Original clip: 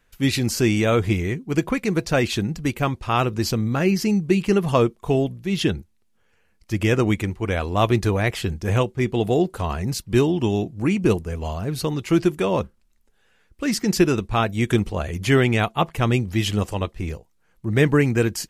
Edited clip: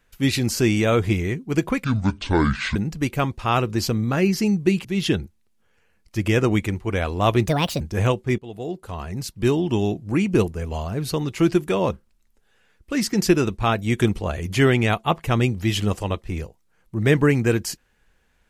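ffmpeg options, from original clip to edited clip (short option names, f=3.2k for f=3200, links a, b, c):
-filter_complex "[0:a]asplit=7[a][b][c][d][e][f][g];[a]atrim=end=1.844[h];[b]atrim=start=1.84:end=2.39,asetpts=PTS-STARTPTS,asetrate=26460,aresample=44100[i];[c]atrim=start=2.386:end=4.482[j];[d]atrim=start=5.398:end=8.034[k];[e]atrim=start=8.03:end=8.51,asetpts=PTS-STARTPTS,asetrate=64827,aresample=44100[l];[f]atrim=start=8.506:end=9.09,asetpts=PTS-STARTPTS,afade=t=out:st=0.58:d=0.004:c=hsin:silence=0.112202[m];[g]atrim=start=9.09,asetpts=PTS-STARTPTS,afade=t=in:d=1.41:silence=0.112202[n];[h][i]acrossfade=d=0.004:c1=hsin:c2=hsin[o];[o][j]acrossfade=d=0.004:c1=hsin:c2=hsin[p];[p][k]acrossfade=d=0.004:c1=hsin:c2=hsin[q];[q][l]acrossfade=d=0.004:c1=hsin:c2=hsin[r];[m][n]concat=n=2:v=0:a=1[s];[r][s]acrossfade=d=0.004:c1=hsin:c2=hsin"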